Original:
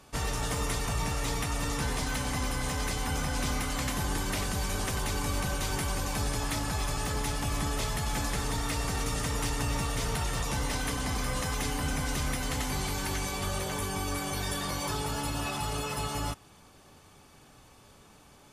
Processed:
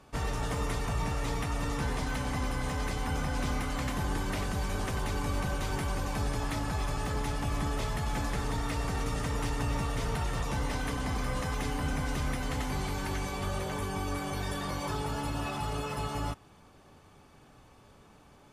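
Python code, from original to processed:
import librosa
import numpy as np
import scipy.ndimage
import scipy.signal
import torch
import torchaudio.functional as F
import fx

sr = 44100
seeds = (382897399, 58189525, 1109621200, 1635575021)

y = fx.high_shelf(x, sr, hz=3300.0, db=-10.0)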